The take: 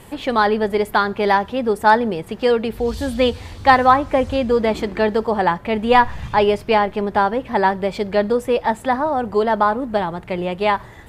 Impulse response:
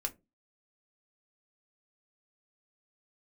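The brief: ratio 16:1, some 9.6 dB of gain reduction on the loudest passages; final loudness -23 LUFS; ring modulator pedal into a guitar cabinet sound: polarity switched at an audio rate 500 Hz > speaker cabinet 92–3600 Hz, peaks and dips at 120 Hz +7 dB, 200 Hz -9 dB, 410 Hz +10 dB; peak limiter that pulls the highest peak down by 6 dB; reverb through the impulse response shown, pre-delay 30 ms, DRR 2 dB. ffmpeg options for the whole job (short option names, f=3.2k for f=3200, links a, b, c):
-filter_complex "[0:a]acompressor=threshold=-16dB:ratio=16,alimiter=limit=-13.5dB:level=0:latency=1,asplit=2[a][b];[1:a]atrim=start_sample=2205,adelay=30[c];[b][c]afir=irnorm=-1:irlink=0,volume=-3dB[d];[a][d]amix=inputs=2:normalize=0,aeval=exprs='val(0)*sgn(sin(2*PI*500*n/s))':c=same,highpass=92,equalizer=f=120:t=q:w=4:g=7,equalizer=f=200:t=q:w=4:g=-9,equalizer=f=410:t=q:w=4:g=10,lowpass=f=3.6k:w=0.5412,lowpass=f=3.6k:w=1.3066,volume=-2dB"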